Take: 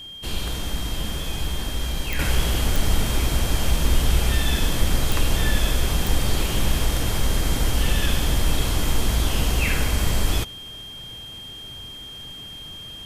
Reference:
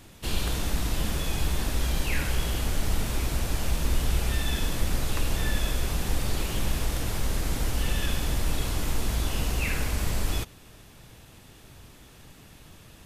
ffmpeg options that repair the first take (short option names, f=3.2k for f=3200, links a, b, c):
-af "adeclick=t=4,bandreject=f=3.2k:w=30,asetnsamples=n=441:p=0,asendcmd='2.19 volume volume -6dB',volume=0dB"